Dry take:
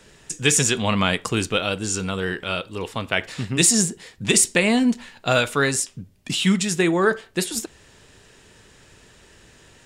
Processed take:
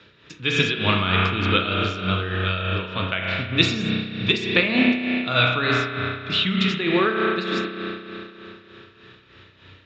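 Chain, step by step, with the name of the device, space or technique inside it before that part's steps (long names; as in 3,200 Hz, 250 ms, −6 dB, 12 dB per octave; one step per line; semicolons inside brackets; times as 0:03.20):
Butterworth low-pass 7,300 Hz 48 dB per octave
combo amplifier with spring reverb and tremolo (spring reverb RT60 3.2 s, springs 32 ms, chirp 55 ms, DRR −0.5 dB; amplitude tremolo 3.3 Hz, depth 61%; loudspeaker in its box 77–4,300 Hz, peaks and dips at 100 Hz +9 dB, 300 Hz +4 dB, 780 Hz −5 dB, 1,300 Hz +8 dB, 2,400 Hz +6 dB, 3,700 Hz +10 dB)
level −2 dB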